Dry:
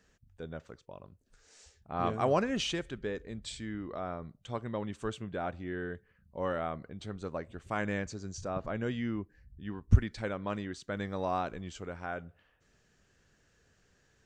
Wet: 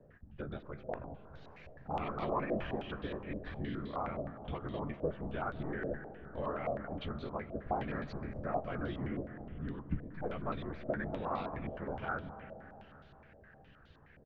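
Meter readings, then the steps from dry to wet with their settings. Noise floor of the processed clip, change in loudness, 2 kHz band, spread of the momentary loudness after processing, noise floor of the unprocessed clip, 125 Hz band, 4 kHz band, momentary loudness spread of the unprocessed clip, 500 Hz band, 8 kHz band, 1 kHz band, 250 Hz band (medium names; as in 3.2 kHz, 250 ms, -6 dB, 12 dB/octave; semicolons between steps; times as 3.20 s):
-60 dBFS, -4.0 dB, -3.5 dB, 15 LU, -70 dBFS, -6.0 dB, -11.0 dB, 16 LU, -3.0 dB, under -30 dB, -2.0 dB, -3.5 dB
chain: tracing distortion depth 0.13 ms; bass shelf 240 Hz +5.5 dB; compression 3:1, threshold -44 dBFS, peak gain reduction 24.5 dB; whisper effect; distance through air 170 m; doubling 14 ms -8.5 dB; algorithmic reverb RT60 3.7 s, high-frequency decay 0.6×, pre-delay 110 ms, DRR 10 dB; step-sequenced low-pass 9.6 Hz 610–3800 Hz; trim +3.5 dB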